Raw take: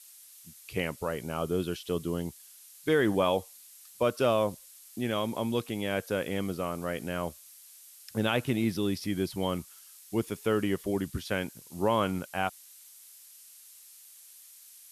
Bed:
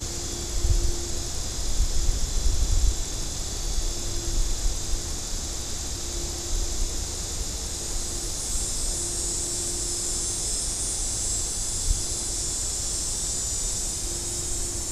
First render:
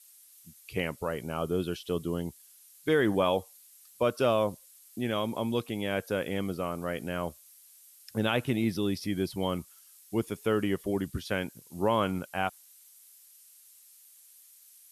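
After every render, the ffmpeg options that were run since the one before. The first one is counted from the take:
-af "afftdn=nr=6:nf=-53"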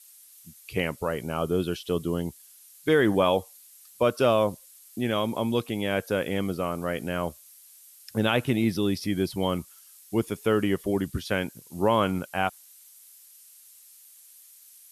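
-af "volume=4dB"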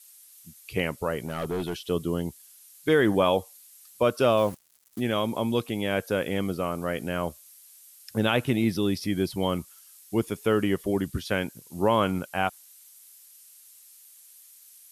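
-filter_complex "[0:a]asettb=1/sr,asplit=3[a][b][c];[a]atrim=end=1.254[d];[b]atrim=start=1.25:end=1.79,asetpts=PTS-STARTPTS,afade=t=in:d=0.004:c=qsin,afade=t=out:st=0.536:d=0.004:c=qsin,volume=26dB,asoftclip=hard,volume=-26dB[e];[c]atrim=start=1.786[f];[d][e]acrossfade=d=0.004:c1=hsin:c2=qsin[g];[g][f]acrossfade=d=0.004:c1=qsin:c2=hsin,asettb=1/sr,asplit=3[h][i][j];[h]atrim=end=4.374[k];[i]atrim=start=4.37:end=5,asetpts=PTS-STARTPTS,afade=t=in:d=0.004:c=qsin,afade=t=out:st=0.626:d=0.004:c=qsin,acrusher=bits=6:mix=0:aa=0.5[l];[j]atrim=start=4.996[m];[k][l]acrossfade=d=0.004:c1=hsin:c2=qsin[n];[n][m]acrossfade=d=0.004:c1=qsin:c2=hsin"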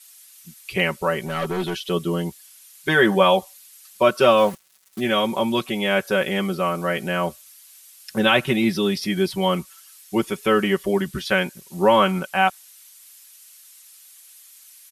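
-af "equalizer=f=2k:w=0.34:g=7,aecho=1:1:5.3:0.88"

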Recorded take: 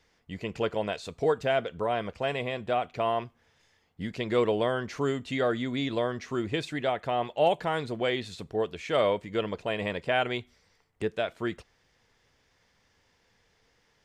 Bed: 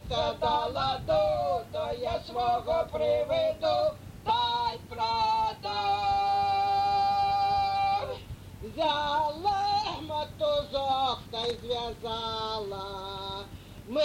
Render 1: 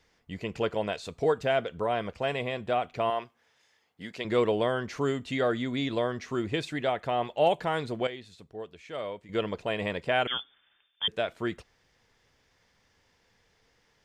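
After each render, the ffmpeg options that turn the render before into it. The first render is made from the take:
-filter_complex "[0:a]asettb=1/sr,asplit=3[a][b][c];[a]atrim=end=3.104[d];[b]atrim=start=3.1:end=4.25,asetpts=PTS-STARTPTS,afade=t=in:d=0.004:c=qsin,afade=t=out:st=1.146:d=0.004:c=qsin,highpass=f=490:p=1[e];[c]atrim=start=4.246[f];[d][e]acrossfade=d=0.004:c1=hsin:c2=qsin[g];[g][f]acrossfade=d=0.004:c1=qsin:c2=hsin,asettb=1/sr,asplit=3[h][i][j];[h]atrim=end=10.274[k];[i]atrim=start=10.27:end=11.08,asetpts=PTS-STARTPTS,afade=t=in:d=0.004:c=qsin,afade=t=out:st=0.806:d=0.004:c=qsin,lowpass=f=3.1k:t=q:w=0.5098,lowpass=f=3.1k:t=q:w=0.6013,lowpass=f=3.1k:t=q:w=0.9,lowpass=f=3.1k:t=q:w=2.563,afreqshift=-3600[l];[j]atrim=start=11.076[m];[k][l]acrossfade=d=0.004:c1=hsin:c2=qsin[n];[n][m]acrossfade=d=0.004:c1=qsin:c2=hsin,asplit=3[o][p][q];[o]atrim=end=8.072[r];[p]atrim=start=8.068:end=9.292,asetpts=PTS-STARTPTS,volume=-11dB[s];[q]atrim=start=9.288[t];[r][s]acrossfade=d=0.004:c1=hsin:c2=hsin[u];[u][t]acrossfade=d=0.004:c1=hsin:c2=hsin"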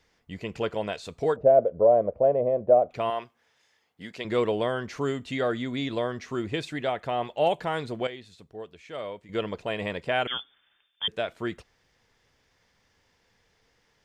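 -filter_complex "[0:a]asettb=1/sr,asplit=3[a][b][c];[a]atrim=end=1.364[d];[b]atrim=start=1.36:end=2.91,asetpts=PTS-STARTPTS,afade=t=in:d=0.004:c=qsin,afade=t=out:st=1.546:d=0.004:c=qsin,lowpass=f=580:t=q:w=5.6[e];[c]atrim=start=2.906[f];[d][e]acrossfade=d=0.004:c1=hsin:c2=qsin[g];[g][f]acrossfade=d=0.004:c1=qsin:c2=hsin"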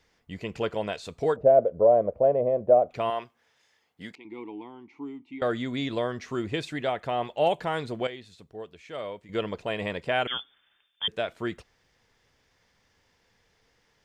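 -filter_complex "[0:a]asettb=1/sr,asplit=3[a][b][c];[a]atrim=end=4.154[d];[b]atrim=start=4.15:end=5.42,asetpts=PTS-STARTPTS,afade=t=in:d=0.004:c=qsin,afade=t=out:st=1.266:d=0.004:c=qsin,asplit=3[e][f][g];[e]bandpass=f=300:t=q:w=8,volume=0dB[h];[f]bandpass=f=870:t=q:w=8,volume=-6dB[i];[g]bandpass=f=2.24k:t=q:w=8,volume=-9dB[j];[h][i][j]amix=inputs=3:normalize=0[k];[c]atrim=start=5.416[l];[d][k]acrossfade=d=0.004:c1=hsin:c2=qsin[m];[m][l]acrossfade=d=0.004:c1=qsin:c2=hsin"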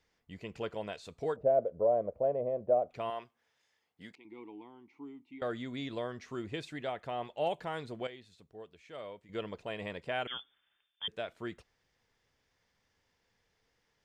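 -af "volume=-9dB"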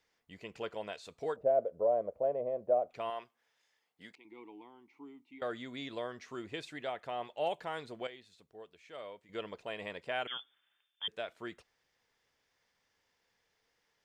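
-af "lowshelf=f=230:g=-11"

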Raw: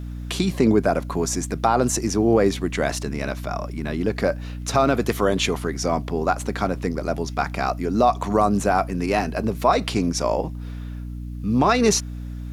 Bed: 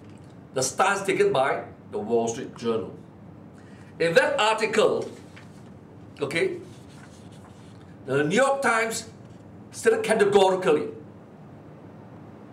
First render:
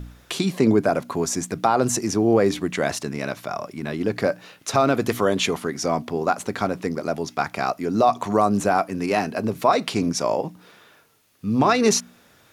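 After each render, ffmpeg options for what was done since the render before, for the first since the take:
-af "bandreject=f=60:t=h:w=4,bandreject=f=120:t=h:w=4,bandreject=f=180:t=h:w=4,bandreject=f=240:t=h:w=4,bandreject=f=300:t=h:w=4"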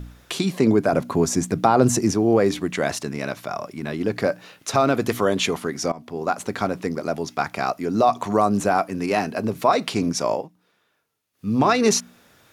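-filter_complex "[0:a]asettb=1/sr,asplit=3[a][b][c];[a]atrim=end=0.934[d];[b]atrim=start=0.93:end=2.13,asetpts=PTS-STARTPTS,afade=t=in:d=0.004:c=qsin,afade=t=out:st=1.196:d=0.004:c=qsin,lowshelf=f=450:g=7.5[e];[c]atrim=start=2.126[f];[d][e]acrossfade=d=0.004:c1=hsin:c2=qsin[g];[g][f]acrossfade=d=0.004:c1=qsin:c2=hsin,asplit=4[h][i][j][k];[h]atrim=end=5.92,asetpts=PTS-STARTPTS,afade=t=out:st=5.916:d=0.004:c=hsin:silence=0.0944061[l];[i]atrim=start=5.92:end=10.48,asetpts=PTS-STARTPTS,afade=t=in:d=0.65:c=qsin:silence=0.0944061,afade=t=out:st=4.41:d=0.15:silence=0.158489[m];[j]atrim=start=10.48:end=11.33,asetpts=PTS-STARTPTS,volume=-16dB[n];[k]atrim=start=11.33,asetpts=PTS-STARTPTS,afade=t=in:d=0.15:silence=0.158489[o];[l][m][n][o]concat=n=4:v=0:a=1"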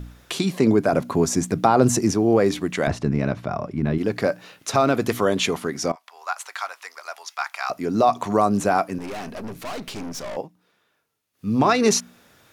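-filter_complex "[0:a]asettb=1/sr,asplit=3[a][b][c];[a]atrim=end=2.874[d];[b]atrim=start=2.87:end=3.98,asetpts=PTS-STARTPTS,afade=t=in:d=0.004:c=qsin,afade=t=out:st=1.106:d=0.004:c=qsin,aemphasis=mode=reproduction:type=riaa[e];[c]atrim=start=3.976[f];[d][e]acrossfade=d=0.004:c1=hsin:c2=qsin[g];[g][f]acrossfade=d=0.004:c1=qsin:c2=hsin,asplit=3[h][i][j];[h]afade=t=out:st=5.94:d=0.02[k];[i]highpass=f=920:w=0.5412,highpass=f=920:w=1.3066,afade=t=in:st=5.94:d=0.02,afade=t=out:st=7.69:d=0.02[l];[j]afade=t=in:st=7.69:d=0.02[m];[k][l][m]amix=inputs=3:normalize=0,asettb=1/sr,asplit=3[n][o][p];[n]atrim=end=8.984[q];[o]atrim=start=8.98:end=10.37,asetpts=PTS-STARTPTS,afade=t=in:d=0.004:c=qsin,afade=t=out:st=1.386:d=0.004:c=qsin,aeval=exprs='(tanh(31.6*val(0)+0.55)-tanh(0.55))/31.6':c=same[r];[p]atrim=start=10.366[s];[q][r]acrossfade=d=0.004:c1=hsin:c2=qsin[t];[t][s]acrossfade=d=0.004:c1=qsin:c2=hsin"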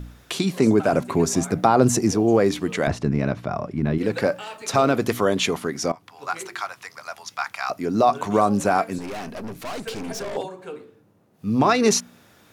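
-filter_complex "[1:a]volume=-15dB[a];[0:a][a]amix=inputs=2:normalize=0"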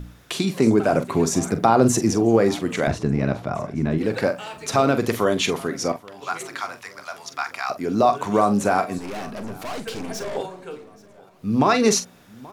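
-filter_complex "[0:a]asplit=2[a][b];[b]adelay=44,volume=-11dB[c];[a][c]amix=inputs=2:normalize=0,aecho=1:1:829|1658|2487:0.0708|0.0361|0.0184"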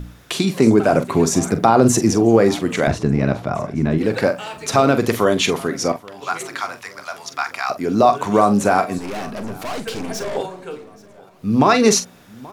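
-af "volume=4dB,alimiter=limit=-1dB:level=0:latency=1"

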